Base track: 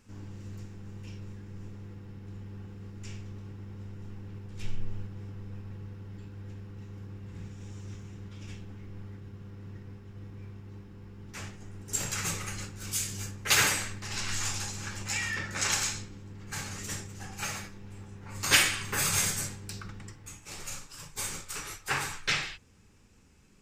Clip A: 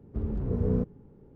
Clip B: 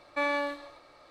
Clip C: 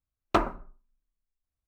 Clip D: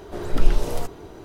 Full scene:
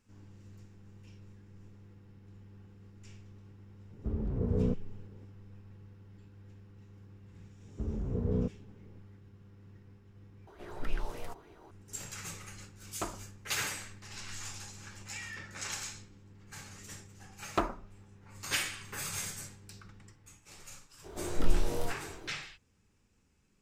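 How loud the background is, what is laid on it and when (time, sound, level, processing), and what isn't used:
base track −10.5 dB
0:03.90: mix in A −3 dB
0:07.64: mix in A −4.5 dB
0:10.47: overwrite with D −16 dB + auto-filter bell 3.4 Hz 820–2,600 Hz +12 dB
0:12.67: mix in C −14.5 dB
0:17.23: mix in C −6.5 dB
0:21.04: mix in D −9 dB + double-tracking delay 23 ms −2.5 dB
not used: B

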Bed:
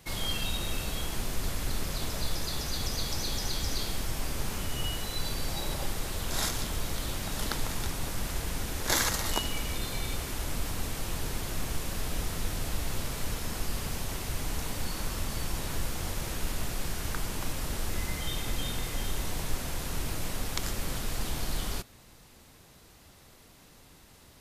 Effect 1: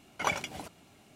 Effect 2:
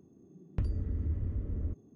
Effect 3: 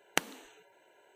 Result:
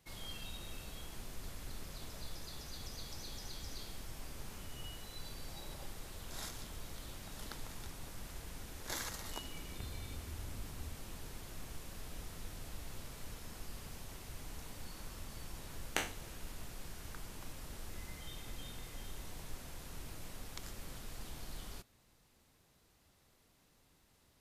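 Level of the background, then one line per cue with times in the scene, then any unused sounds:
bed −14.5 dB
0:09.22: mix in 2 −2.5 dB + downward compressor 2.5 to 1, threshold −49 dBFS
0:15.79: mix in 3 −9 dB + peak hold with a decay on every bin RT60 0.36 s
not used: 1

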